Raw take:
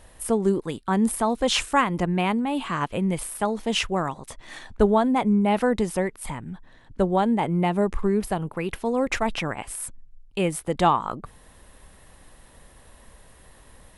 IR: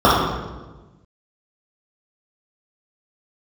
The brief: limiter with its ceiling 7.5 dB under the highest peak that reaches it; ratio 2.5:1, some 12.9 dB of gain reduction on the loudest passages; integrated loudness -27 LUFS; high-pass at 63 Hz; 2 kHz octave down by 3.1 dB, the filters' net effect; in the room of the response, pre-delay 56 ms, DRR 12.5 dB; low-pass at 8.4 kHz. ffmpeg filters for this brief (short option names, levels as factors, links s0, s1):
-filter_complex "[0:a]highpass=63,lowpass=8400,equalizer=f=2000:t=o:g=-4,acompressor=threshold=0.0178:ratio=2.5,alimiter=level_in=1.41:limit=0.0631:level=0:latency=1,volume=0.708,asplit=2[s0][s1];[1:a]atrim=start_sample=2205,adelay=56[s2];[s1][s2]afir=irnorm=-1:irlink=0,volume=0.0075[s3];[s0][s3]amix=inputs=2:normalize=0,volume=3.16"